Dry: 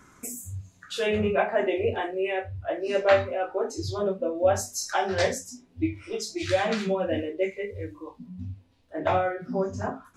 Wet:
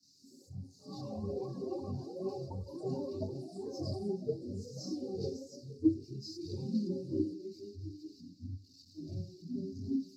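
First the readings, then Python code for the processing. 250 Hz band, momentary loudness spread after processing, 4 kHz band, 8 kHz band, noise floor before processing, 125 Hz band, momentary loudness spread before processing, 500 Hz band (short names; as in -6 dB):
-4.0 dB, 13 LU, -15.0 dB, -20.5 dB, -59 dBFS, -5.5 dB, 15 LU, -15.0 dB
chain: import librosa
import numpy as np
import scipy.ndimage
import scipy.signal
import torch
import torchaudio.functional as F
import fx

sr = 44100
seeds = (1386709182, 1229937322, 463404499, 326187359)

p1 = x + 0.5 * 10.0 ** (-20.5 / 20.0) * np.diff(np.sign(x), prepend=np.sign(x[:1]))
p2 = scipy.signal.sosfilt(scipy.signal.cheby1(4, 1.0, [380.0, 4700.0], 'bandstop', fs=sr, output='sos'), p1)
p3 = fx.peak_eq(p2, sr, hz=580.0, db=-10.0, octaves=2.6)
p4 = fx.rider(p3, sr, range_db=10, speed_s=2.0)
p5 = p3 + (p4 * 10.0 ** (1.5 / 20.0))
p6 = fx.fixed_phaser(p5, sr, hz=2200.0, stages=8)
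p7 = fx.small_body(p6, sr, hz=(280.0, 400.0, 830.0, 1800.0), ring_ms=90, db=13)
p8 = fx.chorus_voices(p7, sr, voices=4, hz=0.26, base_ms=24, depth_ms=1.7, mix_pct=70)
p9 = p8 + 10.0 ** (-18.0 / 20.0) * np.pad(p8, (int(435 * sr / 1000.0), 0))[:len(p8)]
p10 = fx.echo_pitch(p9, sr, ms=148, semitones=6, count=3, db_per_echo=-6.0)
p11 = fx.bandpass_edges(p10, sr, low_hz=220.0, high_hz=6200.0)
p12 = fx.air_absorb(p11, sr, metres=490.0)
p13 = fx.band_widen(p12, sr, depth_pct=40)
y = p13 * 10.0 ** (1.0 / 20.0)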